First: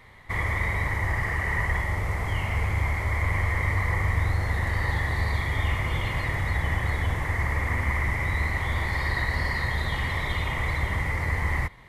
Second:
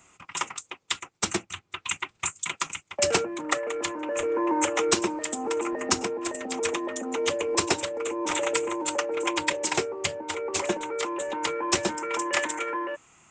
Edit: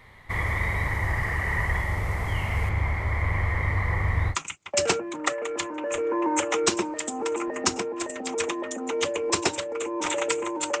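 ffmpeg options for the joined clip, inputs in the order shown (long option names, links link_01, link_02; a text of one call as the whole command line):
ffmpeg -i cue0.wav -i cue1.wav -filter_complex "[0:a]asettb=1/sr,asplit=3[link_01][link_02][link_03];[link_01]atrim=end=2.694[link_04];[link_02]atrim=start=2.69:end=4.36,asetpts=PTS-STARTPTS,afade=type=in:duration=0.004:curve=qsin,afade=type=out:start_time=1.666:duration=0.004:curve=qsin,lowpass=frequency=3000:poles=1[link_05];[link_03]atrim=start=4.356[link_06];[link_04][link_05]acrossfade=duration=0.004:curve1=hsin:curve2=qsin[link_07];[link_07][link_06]acrossfade=duration=0.004:curve1=qsin:curve2=hsin,apad=whole_dur=10.8,atrim=end=10.8,atrim=end=4.36,asetpts=PTS-STARTPTS[link_08];[1:a]atrim=start=2.53:end=9.05,asetpts=PTS-STARTPTS[link_09];[link_08][link_09]acrossfade=duration=0.08:curve1=tri:curve2=tri" out.wav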